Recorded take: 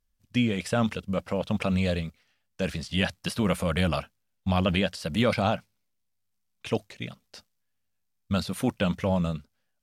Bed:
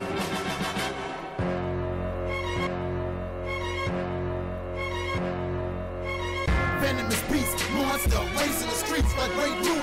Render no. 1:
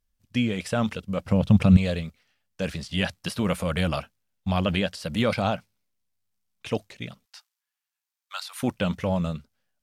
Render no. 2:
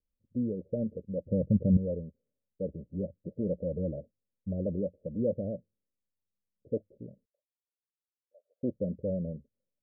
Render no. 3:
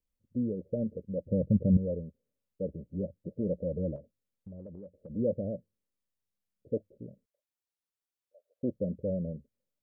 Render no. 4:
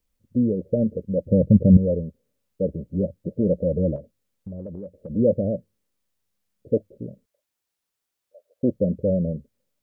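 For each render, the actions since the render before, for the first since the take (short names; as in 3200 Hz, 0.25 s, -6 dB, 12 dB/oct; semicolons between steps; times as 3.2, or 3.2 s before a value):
1.25–1.77 tone controls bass +15 dB, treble +1 dB; 7.25–8.63 steep high-pass 830 Hz
steep low-pass 580 Hz 96 dB/oct; low shelf 280 Hz -11 dB
3.96–5.1 compressor, threshold -43 dBFS
gain +10.5 dB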